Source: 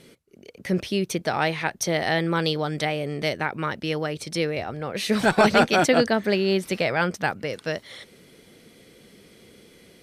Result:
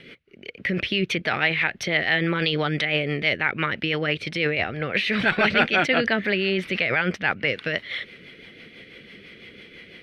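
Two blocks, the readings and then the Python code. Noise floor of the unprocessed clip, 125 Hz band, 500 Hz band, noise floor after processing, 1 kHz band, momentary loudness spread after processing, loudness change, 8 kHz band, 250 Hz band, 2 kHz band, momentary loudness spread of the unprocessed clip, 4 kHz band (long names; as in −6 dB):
−54 dBFS, −0.5 dB, −3.0 dB, −49 dBFS, −3.5 dB, 8 LU, +1.0 dB, below −10 dB, −2.0 dB, +5.5 dB, 12 LU, +3.0 dB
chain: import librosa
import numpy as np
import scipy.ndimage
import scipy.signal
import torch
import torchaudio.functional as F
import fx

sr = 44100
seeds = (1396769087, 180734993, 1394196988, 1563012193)

p1 = fx.curve_eq(x, sr, hz=(960.0, 2100.0, 3000.0, 7500.0), db=(0, 13, 10, -16))
p2 = fx.over_compress(p1, sr, threshold_db=-24.0, ratio=-0.5)
p3 = p1 + F.gain(torch.from_numpy(p2), -1.0).numpy()
p4 = fx.rotary(p3, sr, hz=6.0)
y = F.gain(torch.from_numpy(p4), -4.0).numpy()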